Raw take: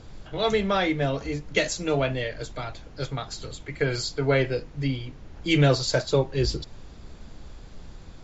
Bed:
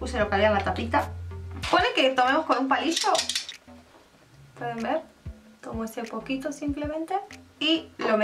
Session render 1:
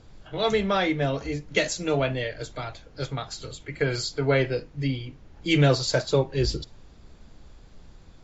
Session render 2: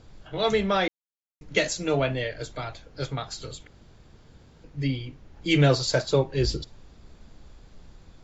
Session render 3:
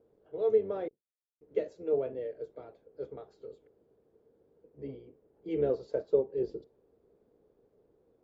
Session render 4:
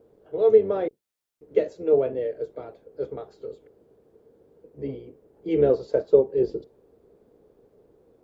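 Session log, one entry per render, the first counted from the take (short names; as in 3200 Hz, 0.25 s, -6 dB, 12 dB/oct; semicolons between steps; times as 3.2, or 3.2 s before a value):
noise print and reduce 6 dB
0.88–1.41 mute; 3.67–4.64 room tone
octaver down 1 oct, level -2 dB; band-pass 440 Hz, Q 5.5
gain +9.5 dB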